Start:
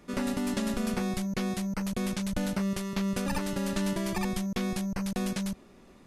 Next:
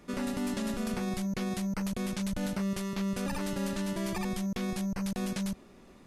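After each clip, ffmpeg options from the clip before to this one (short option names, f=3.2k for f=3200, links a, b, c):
-af "alimiter=level_in=1dB:limit=-24dB:level=0:latency=1:release=38,volume=-1dB"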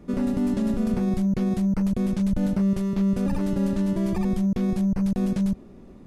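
-af "tiltshelf=f=720:g=8.5,volume=3dB"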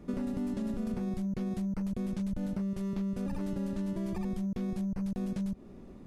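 -af "acompressor=threshold=-28dB:ratio=6,volume=-3dB"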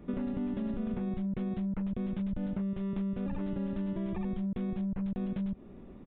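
-af "aresample=8000,aresample=44100"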